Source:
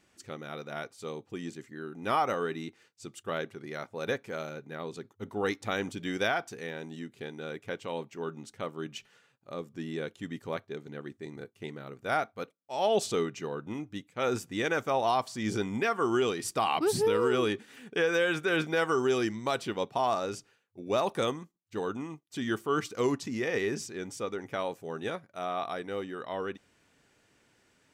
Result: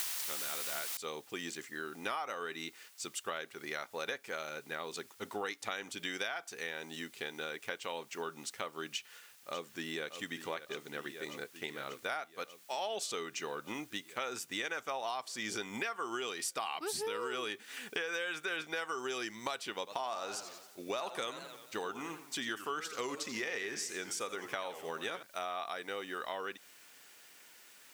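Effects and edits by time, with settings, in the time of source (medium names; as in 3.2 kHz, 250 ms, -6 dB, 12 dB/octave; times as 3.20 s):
0.97 s: noise floor step -41 dB -70 dB
8.91–10.06 s: echo throw 590 ms, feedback 80%, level -12 dB
19.77–25.23 s: modulated delay 88 ms, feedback 50%, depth 199 cents, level -13 dB
whole clip: high-pass 1.4 kHz 6 dB/octave; compression 6:1, threshold -45 dBFS; trim +9.5 dB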